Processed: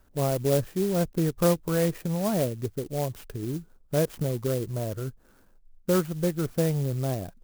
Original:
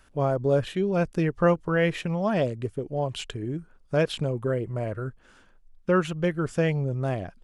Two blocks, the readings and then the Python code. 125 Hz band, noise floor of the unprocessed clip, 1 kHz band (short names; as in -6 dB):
0.0 dB, -57 dBFS, -4.5 dB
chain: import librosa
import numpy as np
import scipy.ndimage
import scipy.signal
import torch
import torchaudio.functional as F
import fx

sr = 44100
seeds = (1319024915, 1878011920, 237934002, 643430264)

y = fx.peak_eq(x, sr, hz=4300.0, db=-13.5, octaves=2.9)
y = fx.clock_jitter(y, sr, seeds[0], jitter_ms=0.077)